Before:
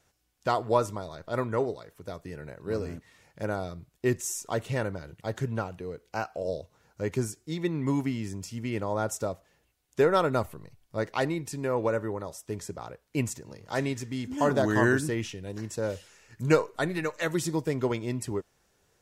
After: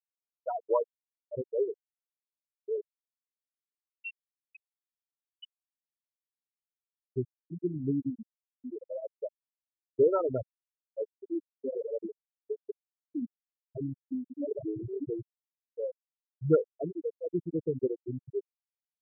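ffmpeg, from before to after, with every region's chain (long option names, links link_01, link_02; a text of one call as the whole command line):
ffmpeg -i in.wav -filter_complex "[0:a]asettb=1/sr,asplit=3[link_01][link_02][link_03];[link_01]atrim=end=2.814[link_04];[link_02]atrim=start=2.81:end=7.08,asetpts=PTS-STARTPTS,afade=type=in:duration=0.004:curve=qsin,afade=type=out:start_time=4.266:duration=0.004:curve=qsin,lowpass=frequency=2600:width_type=q:width=0.5098,lowpass=frequency=2600:width_type=q:width=0.6013,lowpass=frequency=2600:width_type=q:width=0.9,lowpass=frequency=2600:width_type=q:width=2.563,afreqshift=-3100,asoftclip=type=hard:threshold=-20.5dB[link_05];[link_03]atrim=start=7.076[link_06];[link_04][link_05]acrossfade=duration=0.004:curve1=hsin:curve2=qsin[link_07];[link_07][link_06]acrossfade=duration=0.004:curve1=qsin:curve2=hsin,asettb=1/sr,asplit=3[link_08][link_09][link_10];[link_08]atrim=end=11.104[link_11];[link_09]atrim=start=11.1:end=15.08,asetpts=PTS-STARTPTS,afade=type=in:duration=0.004:curve=qsin,afade=type=out:start_time=3.976:duration=0.004:curve=qsin,aphaser=in_gain=1:out_gain=1:delay=4.8:decay=0.57:speed=1.1:type=sinusoidal,bandreject=frequency=104.5:width_type=h:width=4,bandreject=frequency=209:width_type=h:width=4,bandreject=frequency=313.5:width_type=h:width=4,bandreject=frequency=418:width_type=h:width=4,bandreject=frequency=522.5:width_type=h:width=4,bandreject=frequency=627:width_type=h:width=4,bandreject=frequency=731.5:width_type=h:width=4,bandreject=frequency=836:width_type=h:width=4,bandreject=frequency=940.5:width_type=h:width=4,bandreject=frequency=1045:width_type=h:width=4,bandreject=frequency=1149.5:width_type=h:width=4,bandreject=frequency=1254:width_type=h:width=4,bandreject=frequency=1358.5:width_type=h:width=4,acompressor=threshold=-24dB:ratio=16:attack=3.2:release=140:knee=1:detection=peak[link_12];[link_10]atrim=start=15.076[link_13];[link_11][link_12]acrossfade=duration=0.004:curve1=hsin:curve2=qsin[link_14];[link_14][link_13]acrossfade=duration=0.004:curve1=qsin:curve2=hsin,adynamicequalizer=threshold=0.01:dfrequency=430:dqfactor=3.4:tfrequency=430:tqfactor=3.4:attack=5:release=100:ratio=0.375:range=2:mode=boostabove:tftype=bell,lowpass=frequency=1400:poles=1,afftfilt=real='re*gte(hypot(re,im),0.251)':imag='im*gte(hypot(re,im),0.251)':win_size=1024:overlap=0.75,volume=-2.5dB" out.wav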